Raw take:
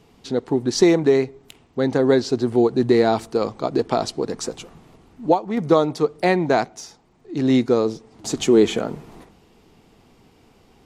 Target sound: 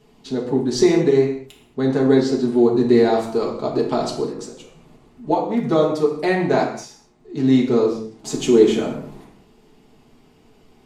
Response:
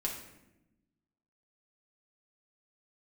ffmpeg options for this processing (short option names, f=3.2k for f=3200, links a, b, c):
-filter_complex "[0:a]asettb=1/sr,asplit=3[a][b][c];[a]atrim=end=4.274[d];[b]atrim=start=4.27:end=5.27,asetpts=PTS-STARTPTS,afade=t=in:d=0.004:c=qsin,afade=t=out:st=0.996:d=0.004:c=qsin,acompressor=threshold=-46dB:ratio=1.5[e];[c]atrim=start=5.266[f];[d][e]acrossfade=d=0.004:c1=hsin:c2=qsin[g];[g][f]acrossfade=d=0.004:c1=qsin:c2=hsin[h];[1:a]atrim=start_sample=2205,afade=t=out:st=0.28:d=0.01,atrim=end_sample=12789[i];[h][i]afir=irnorm=-1:irlink=0,volume=-3dB"